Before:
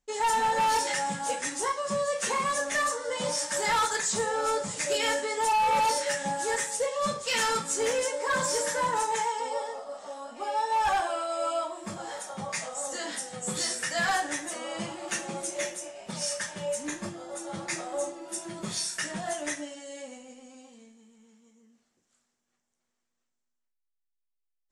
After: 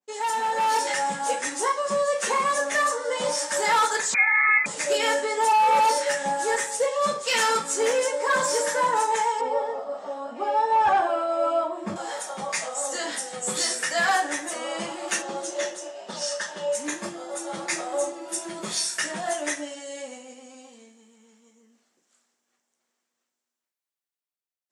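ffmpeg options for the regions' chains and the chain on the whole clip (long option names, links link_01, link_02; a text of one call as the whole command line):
ffmpeg -i in.wav -filter_complex "[0:a]asettb=1/sr,asplit=3[link_01][link_02][link_03];[link_01]atrim=end=4.144[link_04];[link_02]atrim=start=4.14:end=4.66,asetpts=PTS-STARTPTS,afade=type=in:duration=0.004:curve=qsin,afade=type=out:start_time=0.516:duration=0.004:curve=qsin,tiltshelf=frequency=1400:gain=8,lowpass=frequency=2200:width_type=q:width=0.5098,lowpass=frequency=2200:width_type=q:width=0.6013,lowpass=frequency=2200:width_type=q:width=0.9,lowpass=frequency=2200:width_type=q:width=2.563,afreqshift=-2600[link_05];[link_03]atrim=start=4.656[link_06];[link_04][link_05]acrossfade=duration=0.004:curve1=hsin:curve2=qsin[link_07];[link_07][link_06]acrossfade=duration=0.004:curve1=qsin:curve2=hsin,asettb=1/sr,asplit=3[link_08][link_09][link_10];[link_08]atrim=end=9.414[link_11];[link_09]atrim=start=9.41:end=11.96,asetpts=PTS-STARTPTS,afade=type=in:duration=0.004:curve=qsin,afade=type=out:start_time=2.546:duration=0.004:curve=qsin,highpass=54,aemphasis=mode=reproduction:type=riaa[link_12];[link_10]atrim=start=11.956[link_13];[link_11][link_12]acrossfade=duration=0.004:curve1=hsin:curve2=qsin[link_14];[link_14][link_13]acrossfade=duration=0.004:curve1=qsin:curve2=hsin,asettb=1/sr,asplit=3[link_15][link_16][link_17];[link_15]atrim=end=15.224[link_18];[link_16]atrim=start=15.22:end=16.75,asetpts=PTS-STARTPTS,afade=type=in:duration=0.004:curve=qsin,afade=type=out:start_time=1.526:duration=0.004:curve=qsin,highpass=190,lowpass=5900,equalizer=frequency=2300:width=5.6:gain=-12.5[link_19];[link_17]atrim=start=16.746[link_20];[link_18][link_19]acrossfade=duration=0.004:curve1=hsin:curve2=qsin[link_21];[link_21][link_20]acrossfade=duration=0.004:curve1=qsin:curve2=hsin,highpass=280,dynaudnorm=framelen=110:gausssize=13:maxgain=6.5dB,adynamicequalizer=threshold=0.0224:dfrequency=2100:dqfactor=0.7:tfrequency=2100:tqfactor=0.7:attack=5:release=100:ratio=0.375:range=2:mode=cutabove:tftype=highshelf,volume=-1dB" out.wav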